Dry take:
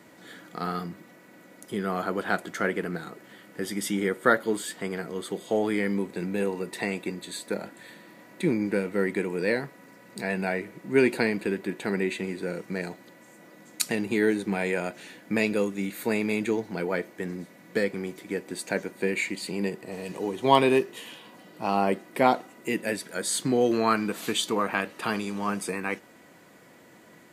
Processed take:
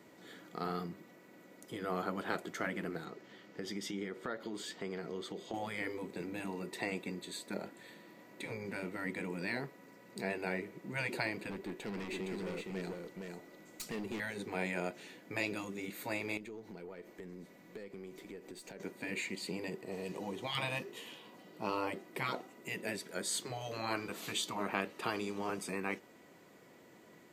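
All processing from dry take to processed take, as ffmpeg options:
-filter_complex "[0:a]asettb=1/sr,asplit=3[a][b][c];[a]atrim=end=3.054[d];[b]atrim=start=3.05:end=5.54,asetpts=PTS-STARTPTS,afade=t=in:d=0.004:c=qsin,afade=t=out:st=2.486:d=0.004:c=qsin,highshelf=f=7.4k:t=q:w=1.5:g=-8,acompressor=threshold=-31dB:ratio=3:attack=3.2:release=140:knee=1:detection=peak[e];[c]atrim=start=5.536[f];[d][e]acrossfade=d=0.004:c1=hsin:c2=qsin[g];[g][f]acrossfade=d=0.004:c1=qsin:c2=hsin,asettb=1/sr,asplit=3[h][i][j];[h]atrim=end=11.504[k];[i]atrim=start=11.5:end=14.2,asetpts=PTS-STARTPTS,afade=t=in:d=0.004:c=qsin,afade=t=out:st=2.696:d=0.004:c=qsin,aeval=exprs='(tanh(31.6*val(0)+0.2)-tanh(0.2))/31.6':c=same,aecho=1:1:464:0.631,atrim=end_sample=119070[l];[j]atrim=start=14.196[m];[k][l]acrossfade=d=0.004:c1=hsin:c2=qsin[n];[n][m]acrossfade=d=0.004:c1=qsin:c2=hsin,asettb=1/sr,asplit=3[o][p][q];[o]atrim=end=16.374[r];[p]atrim=start=16.37:end=18.8,asetpts=PTS-STARTPTS,afade=t=in:d=0.004:c=qsin,afade=t=out:st=2.426:d=0.004:c=qsin,acompressor=threshold=-37dB:ratio=8:attack=3.2:release=140:knee=1:detection=peak,aeval=exprs='(tanh(44.7*val(0)+0.25)-tanh(0.25))/44.7':c=same[s];[q]atrim=start=18.796[t];[r][s]acrossfade=d=0.004:c1=hsin:c2=qsin[u];[u][t]acrossfade=d=0.004:c1=qsin:c2=hsin,equalizer=f=400:t=o:w=0.33:g=5,equalizer=f=1.6k:t=o:w=0.33:g=-4,equalizer=f=10k:t=o:w=0.33:g=-7,afftfilt=real='re*lt(hypot(re,im),0.251)':imag='im*lt(hypot(re,im),0.251)':win_size=1024:overlap=0.75,volume=-6.5dB"

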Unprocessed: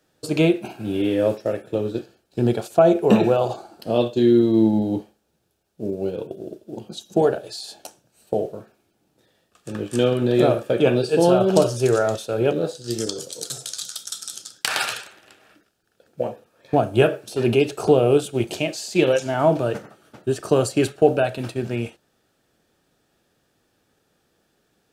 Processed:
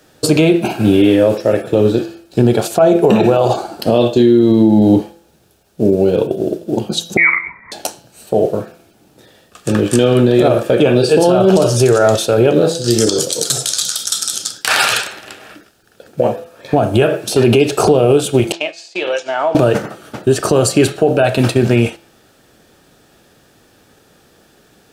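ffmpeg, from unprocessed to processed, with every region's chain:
-filter_complex "[0:a]asettb=1/sr,asplit=3[a][b][c];[a]atrim=end=7.174[d];[b]atrim=start=7.17:end=7.72,asetpts=PTS-STARTPTS,afade=t=in:d=0.004:c=qsin,afade=t=out:st=0.546:d=0.004:c=qsin,highpass=560,lowpass=f=2.3k:t=q:w=0.5098,lowpass=f=2.3k:t=q:w=0.6013,lowpass=f=2.3k:t=q:w=0.9,lowpass=f=2.3k:t=q:w=2.563,afreqshift=-2700[e];[c]atrim=start=7.716[f];[d][e]acrossfade=d=0.004:c1=hsin:c2=qsin[g];[g][f]acrossfade=d=0.004:c1=qsin:c2=hsin,asettb=1/sr,asplit=3[h][i][j];[h]atrim=end=18.524[k];[i]atrim=start=18.52:end=19.55,asetpts=PTS-STARTPTS,afade=t=in:d=0.004:c=qsin,afade=t=out:st=1.026:d=0.004:c=qsin,agate=range=-33dB:threshold=-22dB:ratio=3:release=100:detection=peak,acompressor=threshold=-30dB:ratio=3:attack=3.2:release=140:knee=1:detection=peak,highpass=610,lowpass=5.2k[l];[j]atrim=start=19.546[m];[k][l]acrossfade=d=0.004:c1=hsin:c2=qsin[n];[n][m]acrossfade=d=0.004:c1=qsin:c2=hsin,acompressor=threshold=-22dB:ratio=3,bandreject=f=168.4:t=h:w=4,bandreject=f=336.8:t=h:w=4,bandreject=f=505.2:t=h:w=4,bandreject=f=673.6:t=h:w=4,bandreject=f=842:t=h:w=4,bandreject=f=1.0104k:t=h:w=4,bandreject=f=1.1788k:t=h:w=4,bandreject=f=1.3472k:t=h:w=4,bandreject=f=1.5156k:t=h:w=4,bandreject=f=1.684k:t=h:w=4,bandreject=f=1.8524k:t=h:w=4,bandreject=f=2.0208k:t=h:w=4,bandreject=f=2.1892k:t=h:w=4,bandreject=f=2.3576k:t=h:w=4,bandreject=f=2.526k:t=h:w=4,bandreject=f=2.6944k:t=h:w=4,bandreject=f=2.8628k:t=h:w=4,bandreject=f=3.0312k:t=h:w=4,bandreject=f=3.1996k:t=h:w=4,bandreject=f=3.368k:t=h:w=4,bandreject=f=3.5364k:t=h:w=4,bandreject=f=3.7048k:t=h:w=4,bandreject=f=3.8732k:t=h:w=4,bandreject=f=4.0416k:t=h:w=4,bandreject=f=4.21k:t=h:w=4,bandreject=f=4.3784k:t=h:w=4,bandreject=f=4.5468k:t=h:w=4,bandreject=f=4.7152k:t=h:w=4,bandreject=f=4.8836k:t=h:w=4,bandreject=f=5.052k:t=h:w=4,bandreject=f=5.2204k:t=h:w=4,bandreject=f=5.3888k:t=h:w=4,bandreject=f=5.5572k:t=h:w=4,bandreject=f=5.7256k:t=h:w=4,alimiter=level_in=18dB:limit=-1dB:release=50:level=0:latency=1,volume=-1dB"

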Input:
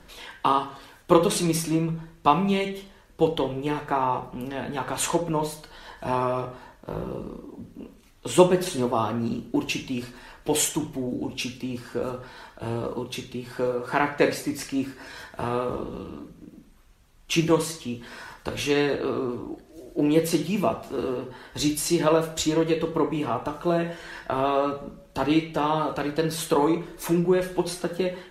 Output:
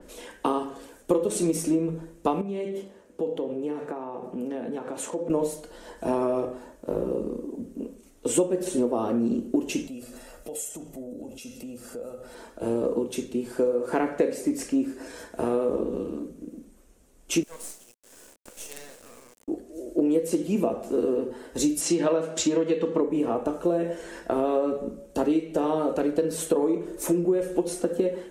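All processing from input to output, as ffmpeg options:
-filter_complex "[0:a]asettb=1/sr,asplit=3[a][b][c];[a]atrim=end=2.414[d];[b]atrim=start=2.41:end=5.3,asetpts=PTS-STARTPTS,afade=t=in:d=0.004:c=qsin,afade=t=out:st=2.886:d=0.004:c=qsin,aemphasis=mode=reproduction:type=cd,acompressor=threshold=-33dB:ratio=4:attack=3.2:release=140:knee=1:detection=peak,highpass=110[e];[c]atrim=start=5.296[f];[d][e]acrossfade=d=0.004:c1=hsin:c2=qsin[g];[g][f]acrossfade=d=0.004:c1=qsin:c2=hsin,asettb=1/sr,asplit=3[h][i][j];[h]atrim=end=9.874[k];[i]atrim=start=9.87:end=12.35,asetpts=PTS-STARTPTS,afade=t=in:d=0.004:c=qsin,afade=t=out:st=2.476:d=0.004:c=qsin,aecho=1:1:1.5:0.52,atrim=end_sample=109368,acompressor=threshold=-41dB:ratio=5:attack=3.2:release=140:knee=1:detection=peak,highshelf=f=10k:g=11.5[l];[j]atrim=start=12.346[m];[k][l]acrossfade=d=0.004:c1=hsin:c2=qsin[n];[n][m]acrossfade=d=0.004:c1=qsin:c2=hsin,asettb=1/sr,asplit=3[o][p][q];[o]atrim=end=17.434[r];[p]atrim=start=17.43:end=19.48,asetpts=PTS-STARTPTS,afade=t=in:d=0.004:c=qsin,afade=t=out:st=2.046:d=0.004:c=qsin,highpass=f=890:w=0.5412,highpass=f=890:w=1.3066,equalizer=f=1.7k:w=0.31:g=-8.5,acrusher=bits=5:dc=4:mix=0:aa=0.000001[s];[q]atrim=start=19.476[t];[r][s]acrossfade=d=0.004:c1=hsin:c2=qsin[u];[u][t]acrossfade=d=0.004:c1=qsin:c2=hsin,asettb=1/sr,asplit=3[v][w][x];[v]atrim=end=21.814[y];[w]atrim=start=21.81:end=23.01,asetpts=PTS-STARTPTS,afade=t=in:d=0.004:c=qsin,afade=t=out:st=1.196:d=0.004:c=qsin,equalizer=f=420:t=o:w=1.5:g=-8,acontrast=61,highpass=160,lowpass=5.4k[z];[x]atrim=start=23.006[aa];[y][z]acrossfade=d=0.004:c1=hsin:c2=qsin[ab];[ab][aa]acrossfade=d=0.004:c1=qsin:c2=hsin,equalizer=f=125:t=o:w=1:g=-9,equalizer=f=250:t=o:w=1:g=8,equalizer=f=500:t=o:w=1:g=9,equalizer=f=1k:t=o:w=1:g=-5,equalizer=f=2k:t=o:w=1:g=-3,equalizer=f=4k:t=o:w=1:g=-7,equalizer=f=8k:t=o:w=1:g=9,acompressor=threshold=-19dB:ratio=6,adynamicequalizer=threshold=0.00562:dfrequency=4400:dqfactor=0.7:tfrequency=4400:tqfactor=0.7:attack=5:release=100:ratio=0.375:range=2.5:mode=cutabove:tftype=highshelf,volume=-1dB"

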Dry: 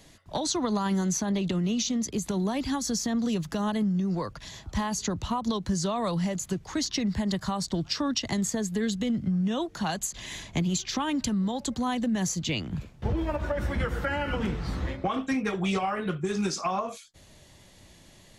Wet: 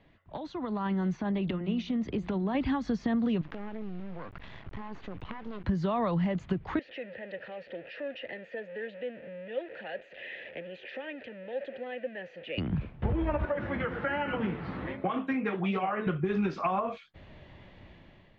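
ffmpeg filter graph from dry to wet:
-filter_complex "[0:a]asettb=1/sr,asplit=3[a][b][c];[a]atrim=end=1.154[d];[b]atrim=start=1.15:end=2.55,asetpts=PTS-STARTPTS,afade=t=in:d=0.004:c=qsin,afade=t=out:st=1.396:d=0.004:c=qsin,acompressor=threshold=-31dB:ratio=3:attack=3.2:release=140:knee=1:detection=peak,lowpass=11k,bandreject=f=176.8:t=h:w=4,bandreject=f=353.6:t=h:w=4,bandreject=f=530.4:t=h:w=4,bandreject=f=707.2:t=h:w=4,bandreject=f=884:t=h:w=4[e];[c]atrim=start=2.546[f];[d][e]acrossfade=d=0.004:c1=hsin:c2=qsin[g];[g][f]acrossfade=d=0.004:c1=qsin:c2=hsin,asettb=1/sr,asplit=3[h][i][j];[h]atrim=end=3.414[k];[i]atrim=start=3.41:end=5.64,asetpts=PTS-STARTPTS,afade=t=in:d=0.004:c=qsin,afade=t=out:st=2.226:d=0.004:c=qsin,acompressor=threshold=-39dB:ratio=4:attack=3.2:release=140:knee=1:detection=peak,acrusher=bits=6:dc=4:mix=0:aa=0.000001[l];[j]atrim=start=5.636[m];[k][l]acrossfade=d=0.004:c1=hsin:c2=qsin[n];[n][m]acrossfade=d=0.004:c1=qsin:c2=hsin,asettb=1/sr,asplit=3[o][p][q];[o]atrim=end=6.794[r];[p]atrim=start=6.79:end=12.58,asetpts=PTS-STARTPTS,afade=t=in:d=0.004:c=qsin,afade=t=out:st=5.786:d=0.004:c=qsin,aeval=exprs='val(0)+0.5*0.0376*sgn(val(0))':c=same,asplit=3[s][t][u];[s]bandpass=f=530:t=q:w=8,volume=0dB[v];[t]bandpass=f=1.84k:t=q:w=8,volume=-6dB[w];[u]bandpass=f=2.48k:t=q:w=8,volume=-9dB[x];[v][w][x]amix=inputs=3:normalize=0,lowshelf=f=250:g=-10[y];[q]atrim=start=12.576[z];[r][y]acrossfade=d=0.004:c1=hsin:c2=qsin[aa];[aa][z]acrossfade=d=0.004:c1=qsin:c2=hsin,asettb=1/sr,asplit=3[ab][ac][ad];[ab]atrim=end=13.454[ae];[ac]atrim=start=13.45:end=16.07,asetpts=PTS-STARTPTS,afade=t=in:d=0.004:c=qsin,afade=t=out:st=2.616:d=0.004:c=qsin,highpass=150,aeval=exprs='val(0)+0.0126*sin(2*PI*11000*n/s)':c=same,flanger=delay=4.5:depth=7.9:regen=75:speed=1.3:shape=sinusoidal[af];[ad]atrim=start=16.066[ag];[ae][af]acrossfade=d=0.004:c1=hsin:c2=qsin[ah];[ah][ag]acrossfade=d=0.004:c1=qsin:c2=hsin,acompressor=threshold=-29dB:ratio=6,lowpass=f=2.8k:w=0.5412,lowpass=f=2.8k:w=1.3066,dynaudnorm=f=320:g=5:m=10.5dB,volume=-6.5dB"

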